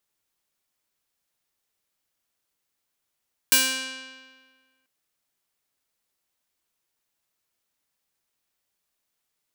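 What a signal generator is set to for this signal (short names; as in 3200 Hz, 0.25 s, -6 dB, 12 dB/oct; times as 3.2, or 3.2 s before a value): plucked string C4, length 1.34 s, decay 1.59 s, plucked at 0.41, bright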